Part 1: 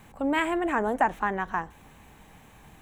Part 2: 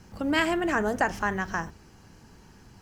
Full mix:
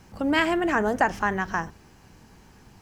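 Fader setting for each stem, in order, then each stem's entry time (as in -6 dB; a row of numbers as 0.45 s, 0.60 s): -7.0 dB, -0.5 dB; 0.00 s, 0.00 s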